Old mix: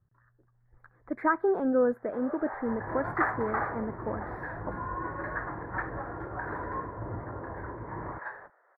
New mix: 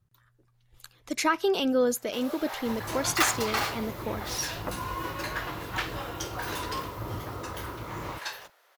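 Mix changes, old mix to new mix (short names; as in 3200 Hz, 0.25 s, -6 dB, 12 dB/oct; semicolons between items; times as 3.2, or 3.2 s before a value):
second sound: remove Chebyshev low-pass 1100 Hz, order 6; master: remove elliptic low-pass 1800 Hz, stop band 40 dB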